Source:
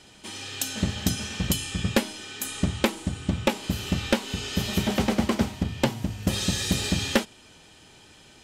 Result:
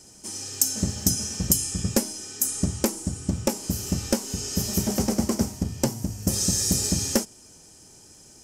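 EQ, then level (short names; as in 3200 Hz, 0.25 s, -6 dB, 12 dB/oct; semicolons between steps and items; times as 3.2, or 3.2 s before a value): EQ curve 410 Hz 0 dB, 3700 Hz -13 dB, 5400 Hz +9 dB; 0.0 dB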